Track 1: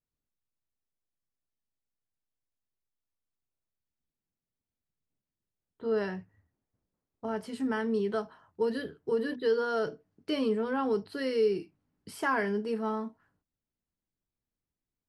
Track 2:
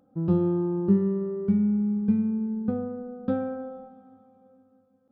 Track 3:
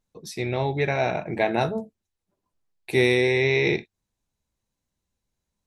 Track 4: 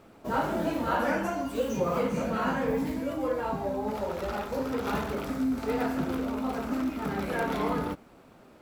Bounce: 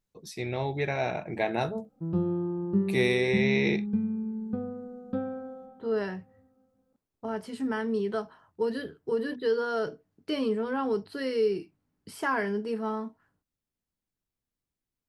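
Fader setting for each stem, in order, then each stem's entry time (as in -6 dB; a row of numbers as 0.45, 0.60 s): +0.5 dB, -5.0 dB, -5.5 dB, off; 0.00 s, 1.85 s, 0.00 s, off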